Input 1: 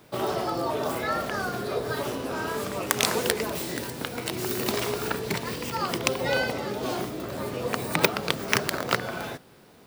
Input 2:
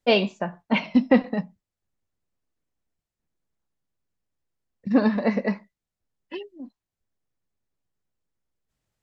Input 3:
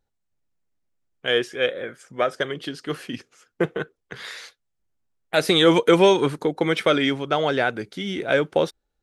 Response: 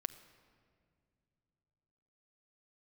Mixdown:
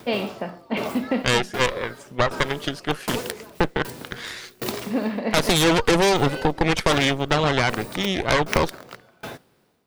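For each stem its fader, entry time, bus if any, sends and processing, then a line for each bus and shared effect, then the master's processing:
+2.5 dB, 0.00 s, no send, upward compressor, threshold -41 dBFS; sawtooth tremolo in dB decaying 1.3 Hz, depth 31 dB
-7.0 dB, 0.00 s, no send, spectral levelling over time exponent 0.6
+1.5 dB, 0.00 s, no send, Chebyshev shaper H 8 -10 dB, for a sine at -4 dBFS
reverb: none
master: compression 2:1, threshold -18 dBFS, peak gain reduction 6 dB

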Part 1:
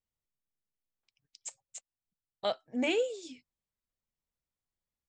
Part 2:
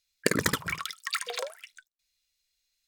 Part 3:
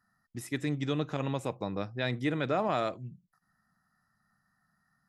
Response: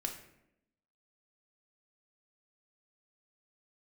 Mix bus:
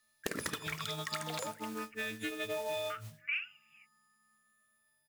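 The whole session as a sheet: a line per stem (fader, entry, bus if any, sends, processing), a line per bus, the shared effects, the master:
+1.5 dB, 0.45 s, no bus, no send, Chebyshev band-pass 1.2–2.8 kHz, order 5
-3.5 dB, 0.00 s, bus A, send -17.5 dB, none
-3.5 dB, 0.00 s, bus A, send -18.5 dB, partials quantised in pitch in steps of 6 st; barber-pole phaser +0.42 Hz
bus A: 0.0 dB, modulation noise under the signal 11 dB; compression 10:1, threshold -35 dBFS, peak gain reduction 14.5 dB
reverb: on, RT60 0.80 s, pre-delay 3 ms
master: bass shelf 190 Hz -4 dB; loudspeaker Doppler distortion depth 0.25 ms

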